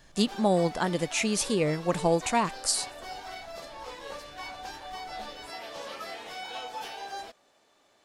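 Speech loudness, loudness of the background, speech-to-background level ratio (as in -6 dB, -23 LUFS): -27.0 LUFS, -40.5 LUFS, 13.5 dB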